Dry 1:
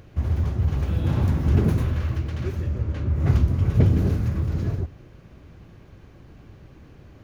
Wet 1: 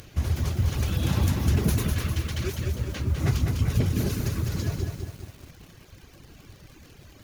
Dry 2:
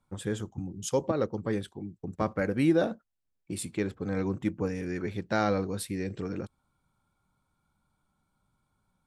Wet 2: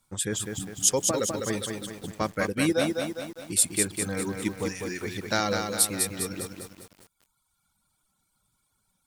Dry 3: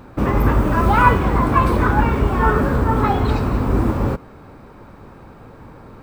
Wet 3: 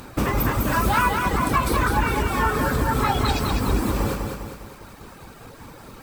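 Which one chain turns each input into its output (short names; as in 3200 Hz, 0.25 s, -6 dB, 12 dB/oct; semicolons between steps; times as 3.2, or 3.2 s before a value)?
high shelf 2300 Hz +10 dB; reverb removal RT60 1.5 s; compressor, threshold -19 dBFS; bell 12000 Hz +8 dB 2.5 oct; lo-fi delay 0.202 s, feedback 55%, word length 8-bit, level -4.5 dB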